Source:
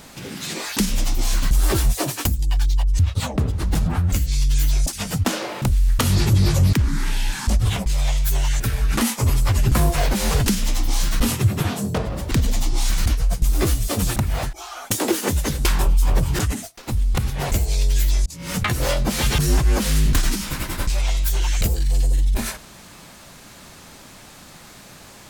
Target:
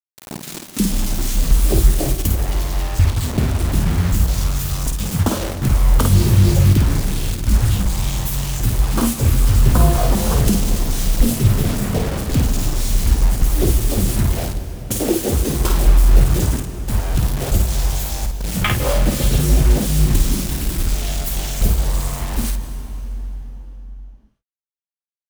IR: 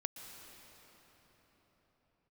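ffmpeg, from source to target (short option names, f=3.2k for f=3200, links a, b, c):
-filter_complex "[0:a]afwtdn=0.0708,aexciter=amount=3.1:drive=4.1:freq=2.7k,acrusher=bits=4:mix=0:aa=0.000001,asplit=2[a][b];[1:a]atrim=start_sample=2205,asetrate=52920,aresample=44100,adelay=52[c];[b][c]afir=irnorm=-1:irlink=0,volume=-1dB[d];[a][d]amix=inputs=2:normalize=0,volume=2.5dB"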